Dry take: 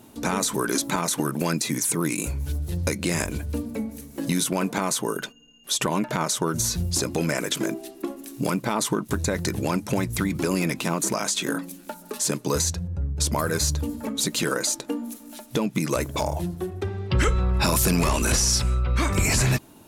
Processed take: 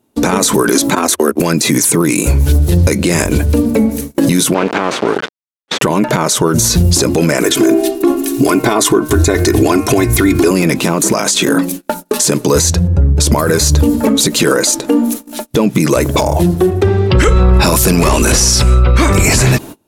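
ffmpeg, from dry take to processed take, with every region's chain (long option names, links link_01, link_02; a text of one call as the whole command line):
ffmpeg -i in.wav -filter_complex "[0:a]asettb=1/sr,asplit=3[link_01][link_02][link_03];[link_01]atrim=end=0.954[link_04];[link_02]atrim=start=0.95:end=1.4,asetpts=PTS-STARTPTS,afade=type=in:duration=0.004:curve=qsin,afade=type=out:start_time=0.446:duration=0.004:curve=qsin,agate=range=-40dB:threshold=-27dB:ratio=16:release=100:detection=peak,afreqshift=81[link_05];[link_03]atrim=start=1.396[link_06];[link_04][link_05]acrossfade=duration=0.004:curve1=hsin:curve2=qsin[link_07];[link_07][link_06]acrossfade=duration=0.004:curve1=qsin:curve2=hsin,asettb=1/sr,asplit=3[link_08][link_09][link_10];[link_08]atrim=end=4.544[link_11];[link_09]atrim=start=4.54:end=5.82,asetpts=PTS-STARTPTS,afade=type=in:duration=0.004:curve=qsin,afade=type=out:start_time=1.276:duration=0.004:curve=qsin,acrusher=bits=3:dc=4:mix=0:aa=0.000001,highpass=210,lowpass=3200[link_12];[link_10]atrim=start=5.816[link_13];[link_11][link_12]acrossfade=duration=0.004:curve1=hsin:curve2=qsin[link_14];[link_14][link_13]acrossfade=duration=0.004:curve1=qsin:curve2=hsin,asettb=1/sr,asplit=3[link_15][link_16][link_17];[link_15]atrim=end=7.434[link_18];[link_16]atrim=start=7.43:end=10.51,asetpts=PTS-STARTPTS,afade=type=in:duration=0.004:curve=qsin,afade=type=out:start_time=3.076:duration=0.004:curve=qsin,aecho=1:1:2.8:0.77,atrim=end_sample=135828,bandreject=frequency=153.4:width_type=h:width=4,bandreject=frequency=306.8:width_type=h:width=4,bandreject=frequency=460.2:width_type=h:width=4,bandreject=frequency=613.6:width_type=h:width=4,bandreject=frequency=767:width_type=h:width=4,bandreject=frequency=920.4:width_type=h:width=4,bandreject=frequency=1073.8:width_type=h:width=4,bandreject=frequency=1227.2:width_type=h:width=4,bandreject=frequency=1380.6:width_type=h:width=4,bandreject=frequency=1534:width_type=h:width=4,bandreject=frequency=1687.4:width_type=h:width=4,bandreject=frequency=1840.8:width_type=h:width=4,bandreject=frequency=1994.2:width_type=h:width=4,bandreject=frequency=2147.6:width_type=h:width=4,bandreject=frequency=2301:width_type=h:width=4,bandreject=frequency=2454.4:width_type=h:width=4,bandreject=frequency=2607.8:width_type=h:width=4,bandreject=frequency=2761.2:width_type=h:width=4[link_19];[link_17]atrim=start=10.506[link_20];[link_18][link_19]acrossfade=duration=0.004:curve1=hsin:curve2=qsin[link_21];[link_21][link_20]acrossfade=duration=0.004:curve1=qsin:curve2=hsin,agate=range=-31dB:threshold=-40dB:ratio=16:detection=peak,equalizer=frequency=410:width=1.1:gain=4.5,alimiter=level_in=19dB:limit=-1dB:release=50:level=0:latency=1,volume=-1dB" out.wav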